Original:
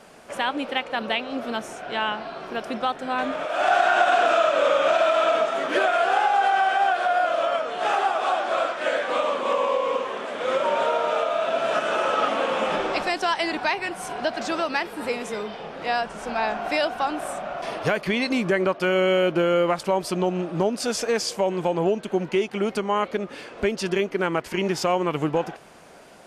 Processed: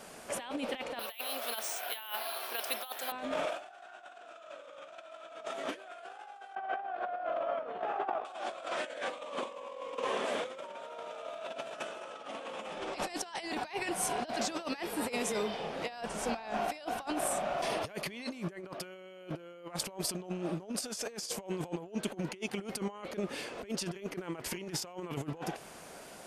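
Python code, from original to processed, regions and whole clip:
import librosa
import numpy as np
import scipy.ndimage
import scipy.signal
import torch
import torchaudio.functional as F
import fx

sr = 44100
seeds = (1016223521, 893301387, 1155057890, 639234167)

y = fx.chain(x, sr, fx.highpass(hz=780.0, slope=12),
    fx.peak_eq(hz=4000.0, db=5.5, octaves=1.2),
    fx.resample_bad(factor=3, down='none', up='hold'), at=(0.99, 3.12))
y = fx.chain(y, sr, fx.lowpass(hz=1500.0, slope=12),
    fx.over_compress(threshold_db=-28.0, ratio=-0.5), at=(6.55, 8.25))
y = fx.high_shelf(y, sr, hz=6800.0, db=11.0)
y = fx.over_compress(y, sr, threshold_db=-29.0, ratio=-0.5)
y = fx.dynamic_eq(y, sr, hz=1400.0, q=2.4, threshold_db=-41.0, ratio=4.0, max_db=-4)
y = y * 10.0 ** (-8.0 / 20.0)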